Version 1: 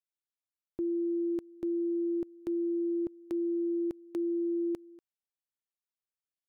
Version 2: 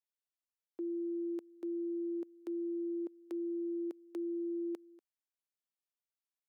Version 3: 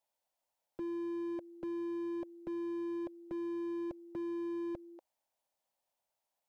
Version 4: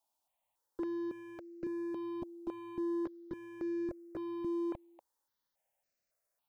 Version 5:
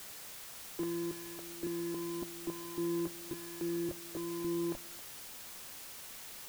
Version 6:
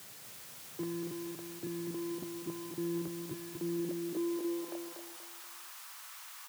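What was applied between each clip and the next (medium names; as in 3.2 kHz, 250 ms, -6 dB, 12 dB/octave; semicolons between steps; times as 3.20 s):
high-pass 300 Hz 24 dB/octave; trim -5 dB
high-order bell 710 Hz +13 dB 1.1 oct; slew-rate limiter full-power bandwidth 2.6 Hz; trim +5.5 dB
stepped phaser 3.6 Hz 510–3300 Hz; trim +4 dB
octave divider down 1 oct, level -6 dB; word length cut 8-bit, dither triangular
high-pass sweep 120 Hz -> 1.1 kHz, 3.33–5.31 s; feedback delay 239 ms, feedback 36%, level -5 dB; trim -3 dB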